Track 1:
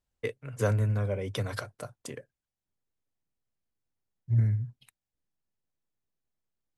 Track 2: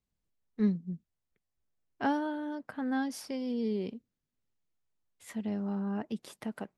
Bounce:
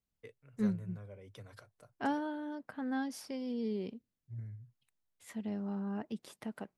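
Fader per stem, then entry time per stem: −19.5, −4.0 decibels; 0.00, 0.00 seconds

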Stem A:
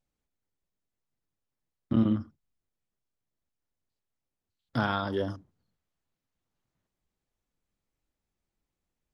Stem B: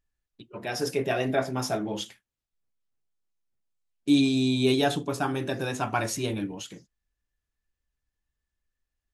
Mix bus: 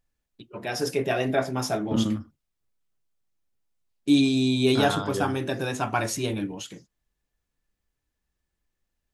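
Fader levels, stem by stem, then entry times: −0.5, +1.5 decibels; 0.00, 0.00 seconds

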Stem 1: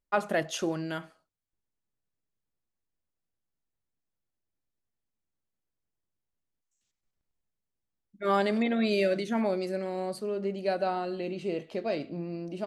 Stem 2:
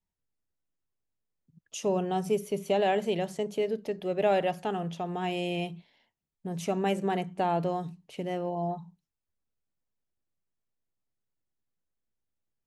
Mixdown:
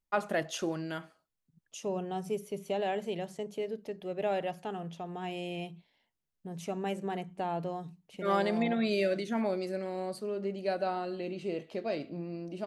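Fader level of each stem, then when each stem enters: −3.0, −6.5 decibels; 0.00, 0.00 seconds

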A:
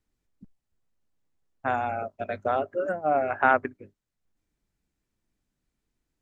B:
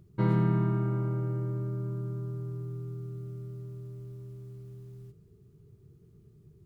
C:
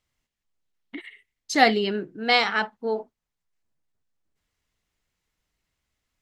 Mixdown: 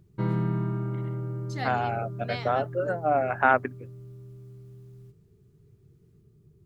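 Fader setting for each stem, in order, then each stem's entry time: 0.0, −1.5, −17.5 decibels; 0.00, 0.00, 0.00 seconds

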